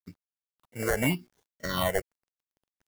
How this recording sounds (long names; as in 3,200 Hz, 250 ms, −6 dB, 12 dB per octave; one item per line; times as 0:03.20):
aliases and images of a low sample rate 2,500 Hz, jitter 0%
phaser sweep stages 6, 0.85 Hz, lowest notch 240–1,300 Hz
a quantiser's noise floor 12 bits, dither none
tremolo triangle 4 Hz, depth 50%